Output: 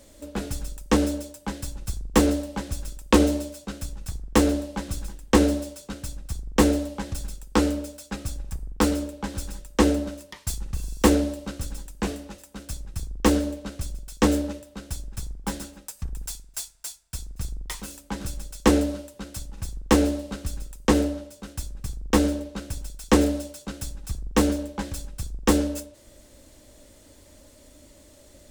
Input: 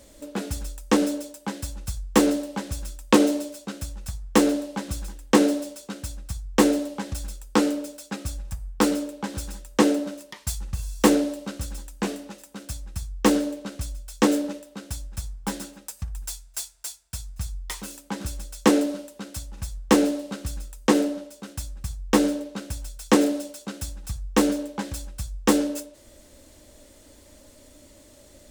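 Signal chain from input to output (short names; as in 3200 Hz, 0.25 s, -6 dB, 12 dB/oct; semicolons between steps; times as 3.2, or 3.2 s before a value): octaver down 2 oct, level -3 dB; gain -1 dB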